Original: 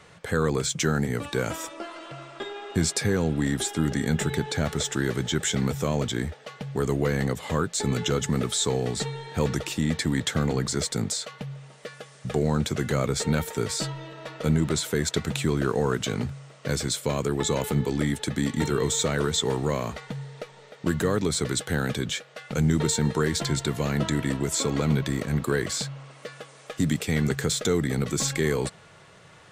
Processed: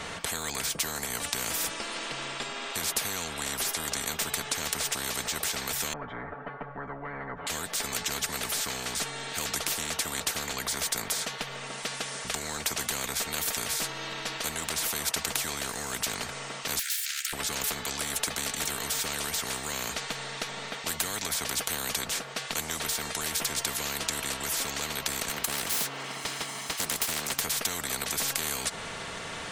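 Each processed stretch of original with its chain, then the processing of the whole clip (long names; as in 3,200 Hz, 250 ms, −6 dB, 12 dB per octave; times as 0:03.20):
0:05.93–0:07.47: low-pass filter 1,200 Hz 24 dB per octave + comb filter 7 ms, depth 95%
0:16.79–0:17.33: lower of the sound and its delayed copy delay 2.2 ms + Butterworth high-pass 1,600 Hz 72 dB per octave + downward compressor 2.5 to 1, threshold −37 dBFS
0:25.29–0:27.40: lower of the sound and its delayed copy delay 0.97 ms + high-pass filter 160 Hz
whole clip: comb filter 4.4 ms, depth 49%; dynamic equaliser 2,900 Hz, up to −6 dB, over −42 dBFS, Q 0.72; every bin compressed towards the loudest bin 10 to 1; level +4 dB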